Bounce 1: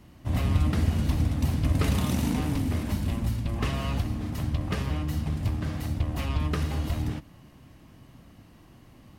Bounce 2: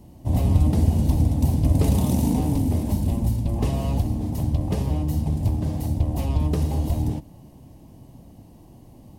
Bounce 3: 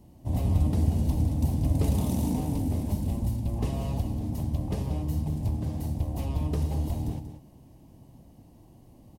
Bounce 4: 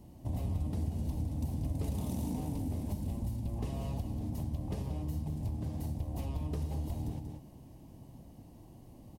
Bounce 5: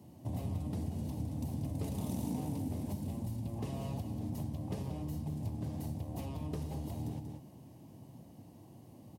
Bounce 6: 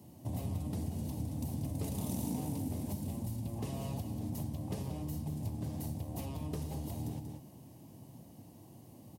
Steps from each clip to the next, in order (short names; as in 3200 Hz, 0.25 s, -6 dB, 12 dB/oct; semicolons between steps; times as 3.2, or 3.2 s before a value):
EQ curve 890 Hz 0 dB, 1300 Hz -18 dB, 9700 Hz 0 dB; gain +5.5 dB
echo 0.186 s -10 dB; gain -6.5 dB
compressor 2.5:1, threshold -36 dBFS, peak gain reduction 12 dB
HPF 91 Hz 24 dB/oct
high shelf 5500 Hz +7.5 dB